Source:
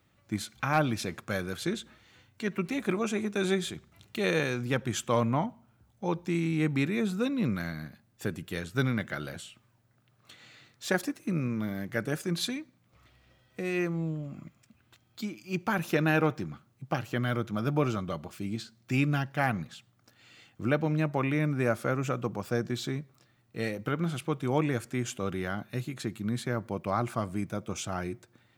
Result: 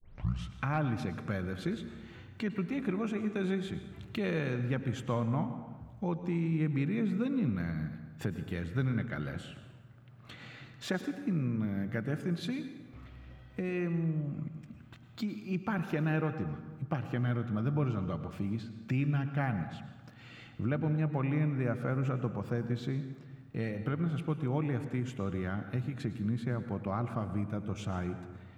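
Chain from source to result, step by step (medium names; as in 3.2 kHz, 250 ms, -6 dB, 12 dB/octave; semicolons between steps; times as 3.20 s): tape start-up on the opening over 0.52 s; tone controls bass +8 dB, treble -13 dB; compression 2:1, threshold -46 dBFS, peak gain reduction 15.5 dB; reverberation RT60 1.4 s, pre-delay 91 ms, DRR 9.5 dB; trim +5.5 dB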